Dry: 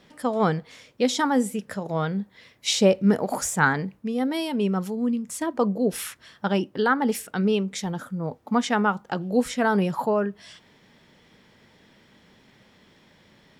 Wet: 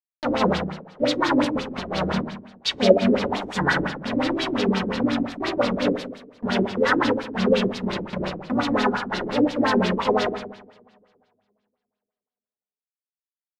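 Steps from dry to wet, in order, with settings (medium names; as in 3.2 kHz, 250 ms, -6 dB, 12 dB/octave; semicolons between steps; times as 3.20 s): harmony voices -12 st -13 dB, +3 st -1 dB; bit crusher 4-bit; two-slope reverb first 0.78 s, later 2.2 s, from -20 dB, DRR -2 dB; LFO low-pass sine 5.7 Hz 300–4600 Hz; trim -7.5 dB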